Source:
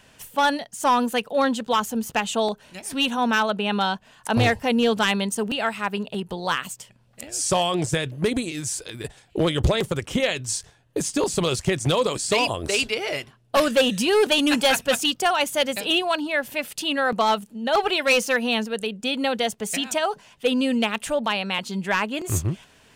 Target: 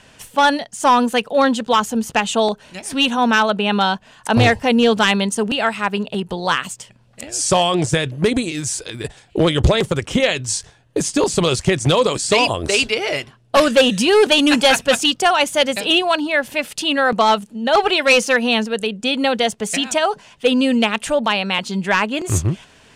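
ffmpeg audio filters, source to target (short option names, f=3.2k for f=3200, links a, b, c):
-af "lowpass=9.8k,volume=6dB"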